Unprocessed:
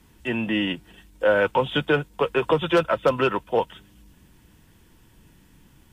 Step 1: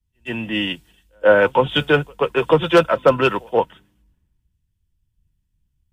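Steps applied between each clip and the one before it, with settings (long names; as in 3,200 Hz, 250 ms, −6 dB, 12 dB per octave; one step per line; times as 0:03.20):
echo ahead of the sound 126 ms −21.5 dB
multiband upward and downward expander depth 100%
level +3.5 dB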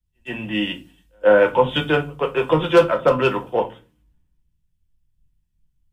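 rectangular room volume 120 cubic metres, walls furnished, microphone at 0.86 metres
level −3.5 dB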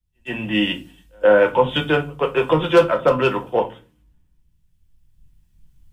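camcorder AGC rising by 6.2 dB per second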